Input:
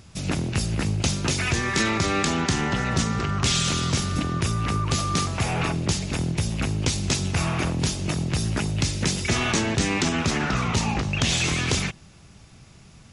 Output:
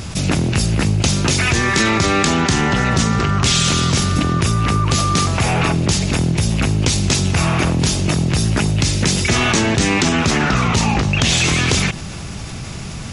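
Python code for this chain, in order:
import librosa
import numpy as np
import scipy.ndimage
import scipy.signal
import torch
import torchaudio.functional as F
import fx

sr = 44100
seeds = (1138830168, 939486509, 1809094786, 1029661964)

y = fx.env_flatten(x, sr, amount_pct=50)
y = y * librosa.db_to_amplitude(5.5)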